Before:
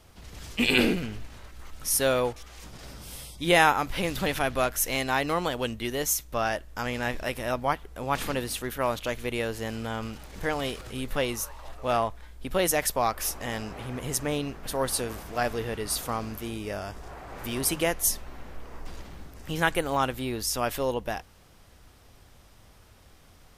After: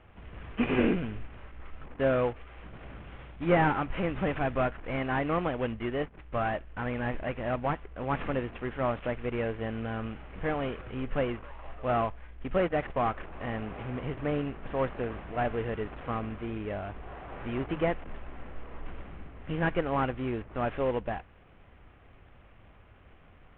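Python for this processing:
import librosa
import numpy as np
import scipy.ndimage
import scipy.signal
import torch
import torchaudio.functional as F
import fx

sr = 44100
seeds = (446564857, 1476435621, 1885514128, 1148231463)

y = fx.cvsd(x, sr, bps=16000)
y = fx.lowpass(y, sr, hz=2300.0, slope=6)
y = fx.notch(y, sr, hz=900.0, q=21.0)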